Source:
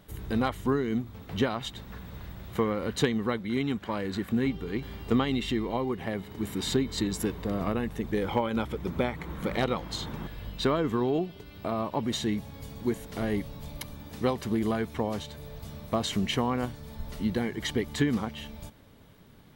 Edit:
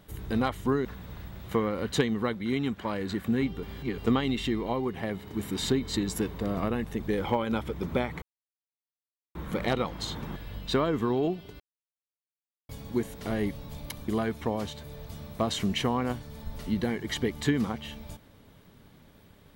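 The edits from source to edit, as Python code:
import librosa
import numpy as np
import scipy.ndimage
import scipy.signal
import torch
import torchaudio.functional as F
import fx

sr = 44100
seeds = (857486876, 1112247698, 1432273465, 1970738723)

y = fx.edit(x, sr, fx.cut(start_s=0.85, length_s=1.04),
    fx.reverse_span(start_s=4.67, length_s=0.35),
    fx.insert_silence(at_s=9.26, length_s=1.13),
    fx.silence(start_s=11.51, length_s=1.09),
    fx.cut(start_s=13.99, length_s=0.62), tone=tone)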